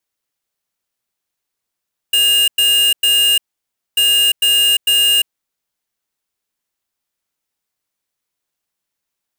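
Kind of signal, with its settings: beep pattern square 2.83 kHz, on 0.35 s, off 0.10 s, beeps 3, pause 0.59 s, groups 2, -12.5 dBFS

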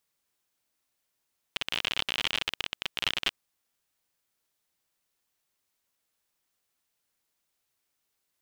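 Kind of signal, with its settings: random clicks 52 per s -12 dBFS 1.79 s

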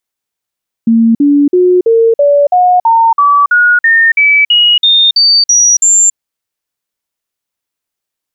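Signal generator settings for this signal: stepped sine 228 Hz up, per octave 3, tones 16, 0.28 s, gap 0.05 s -4 dBFS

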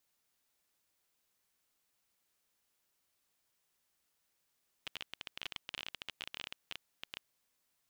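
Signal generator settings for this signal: random clicks 20 per s -24 dBFS 2.42 s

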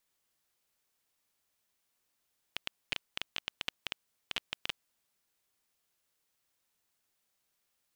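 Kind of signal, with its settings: random clicks 10 per s -15.5 dBFS 2.36 s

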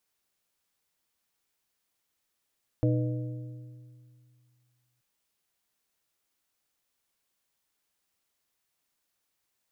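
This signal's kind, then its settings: metal hit plate, length 2.18 s, lowest mode 123 Hz, modes 4, decay 2.36 s, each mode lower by 4 dB, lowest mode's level -22 dB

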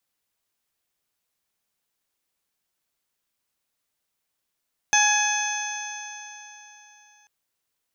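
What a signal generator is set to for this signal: stretched partials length 2.34 s, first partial 833 Hz, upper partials 0.5/-1.5/-5.5/-18/-11/1.5 dB, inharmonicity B 0.003, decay 3.42 s, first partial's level -21 dB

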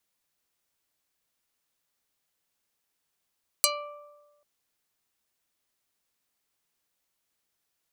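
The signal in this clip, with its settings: plucked string D5, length 0.79 s, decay 1.27 s, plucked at 0.33, dark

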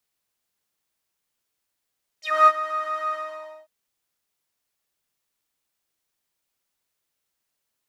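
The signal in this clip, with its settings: synth patch with pulse-width modulation D#5, interval +19 st, sub -17 dB, noise -9 dB, filter bandpass, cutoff 820 Hz, Q 7.3, filter envelope 3 oct, filter decay 0.09 s, filter sustain 20%, attack 249 ms, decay 0.05 s, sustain -13.5 dB, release 0.54 s, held 0.91 s, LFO 3.2 Hz, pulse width 49%, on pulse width 11%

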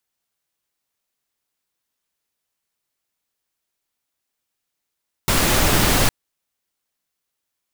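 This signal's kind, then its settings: noise pink, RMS -16.5 dBFS 0.81 s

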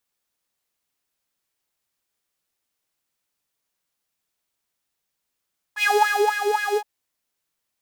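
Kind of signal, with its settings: synth patch with filter wobble G#5, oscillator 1 saw, sub -7.5 dB, noise -18 dB, filter highpass, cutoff 640 Hz, Q 6.7, filter envelope 1 oct, filter sustain 40%, attack 68 ms, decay 0.54 s, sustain -6.5 dB, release 0.06 s, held 1.01 s, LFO 3.8 Hz, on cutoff 1.1 oct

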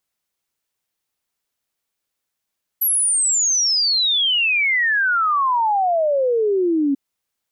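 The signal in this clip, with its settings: log sweep 12 kHz -> 270 Hz 4.14 s -15 dBFS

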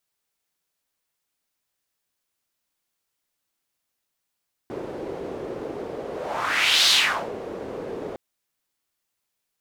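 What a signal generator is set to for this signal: whoosh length 3.46 s, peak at 2.20 s, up 0.87 s, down 0.45 s, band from 430 Hz, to 3.9 kHz, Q 2.6, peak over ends 15.5 dB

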